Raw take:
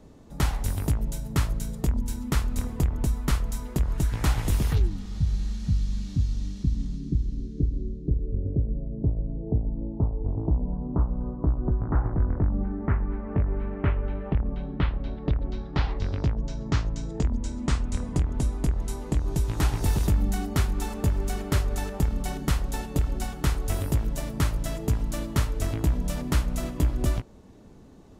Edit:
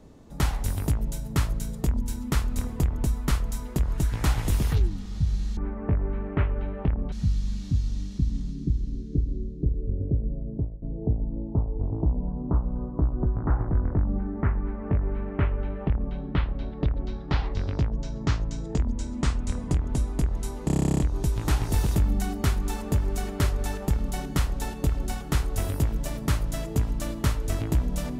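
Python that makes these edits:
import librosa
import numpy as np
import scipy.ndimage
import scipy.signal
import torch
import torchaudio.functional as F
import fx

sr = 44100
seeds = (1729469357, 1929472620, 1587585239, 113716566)

y = fx.edit(x, sr, fx.fade_out_to(start_s=8.94, length_s=0.33, floor_db=-21.0),
    fx.duplicate(start_s=13.04, length_s=1.55, to_s=5.57),
    fx.stutter(start_s=19.11, slice_s=0.03, count=12), tone=tone)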